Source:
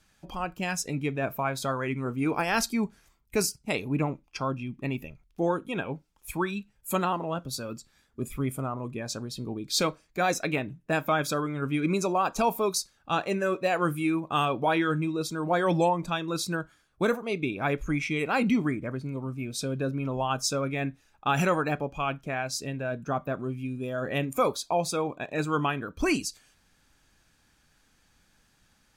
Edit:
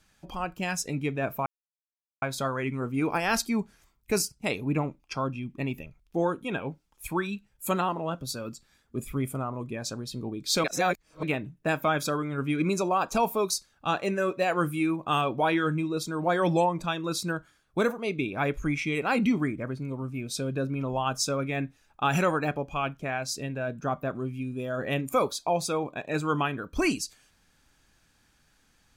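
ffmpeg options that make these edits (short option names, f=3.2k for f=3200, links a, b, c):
-filter_complex "[0:a]asplit=4[a][b][c][d];[a]atrim=end=1.46,asetpts=PTS-STARTPTS,afade=t=out:st=1.456:d=0.004:c=hsin,apad=pad_dur=0.76[e];[b]atrim=start=1.46:end=9.882,asetpts=PTS-STARTPTS,afade=t=in:d=0.004:c=hsin[f];[c]atrim=start=9.878:end=10.472,asetpts=PTS-STARTPTS,areverse[g];[d]atrim=start=10.468[h];[e][f]concat=n=2:v=0:a=1[i];[i][g]acrossfade=d=0.004:c1=hsin:c2=hsin[j];[j][h]acrossfade=d=0.004:c1=hsin:c2=hsin"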